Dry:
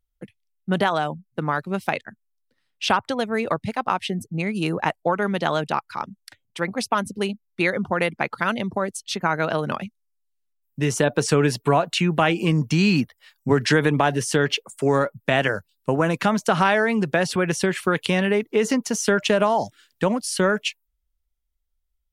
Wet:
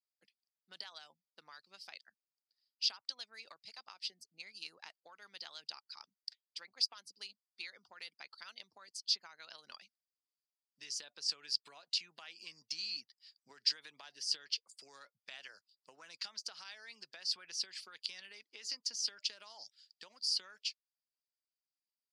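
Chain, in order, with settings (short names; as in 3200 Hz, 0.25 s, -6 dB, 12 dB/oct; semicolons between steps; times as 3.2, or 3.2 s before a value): harmonic-percussive split harmonic -6 dB; compressor, threshold -23 dBFS, peak gain reduction 9 dB; band-pass 4800 Hz, Q 13; gain +7.5 dB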